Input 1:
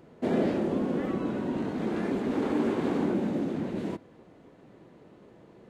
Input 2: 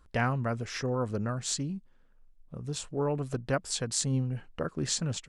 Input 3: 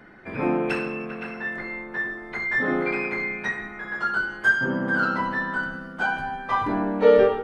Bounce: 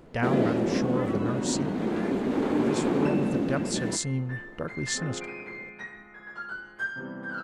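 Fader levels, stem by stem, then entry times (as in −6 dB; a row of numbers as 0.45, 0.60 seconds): +2.0, −0.5, −12.5 decibels; 0.00, 0.00, 2.35 seconds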